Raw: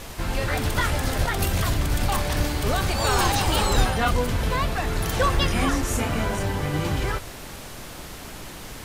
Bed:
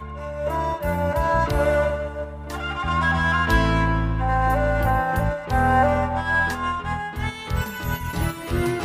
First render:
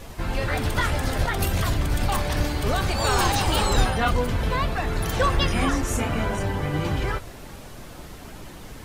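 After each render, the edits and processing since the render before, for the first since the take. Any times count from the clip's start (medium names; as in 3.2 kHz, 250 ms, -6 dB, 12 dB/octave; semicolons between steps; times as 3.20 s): noise reduction 7 dB, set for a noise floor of -39 dBFS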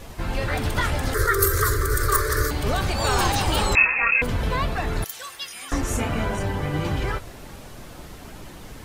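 1.14–2.51 s: FFT filter 130 Hz 0 dB, 190 Hz -29 dB, 420 Hz +14 dB, 790 Hz -23 dB, 1.2 kHz +12 dB, 1.9 kHz +6 dB, 2.7 kHz -15 dB, 4.2 kHz +1 dB, 6.7 kHz +7 dB, 15 kHz +14 dB; 3.75–4.22 s: frequency inversion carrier 2.6 kHz; 5.04–5.72 s: differentiator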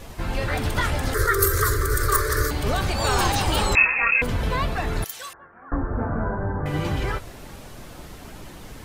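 5.33–6.66 s: Chebyshev low-pass 1.6 kHz, order 5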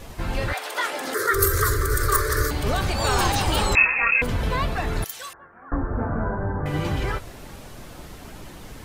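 0.52–1.33 s: high-pass 660 Hz -> 170 Hz 24 dB/octave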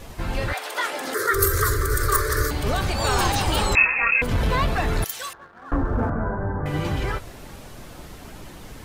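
4.31–6.10 s: waveshaping leveller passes 1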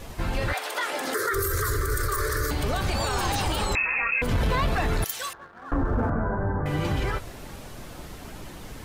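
peak limiter -17 dBFS, peak gain reduction 11.5 dB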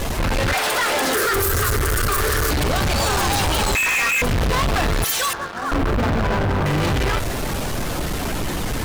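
waveshaping leveller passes 5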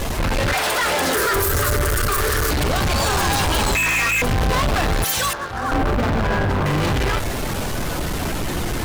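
add bed -10 dB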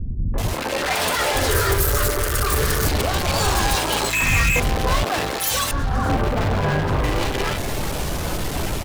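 three bands offset in time lows, mids, highs 340/380 ms, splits 230/1500 Hz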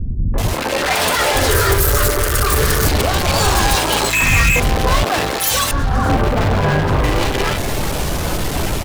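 trim +5 dB; peak limiter -3 dBFS, peak gain reduction 1.5 dB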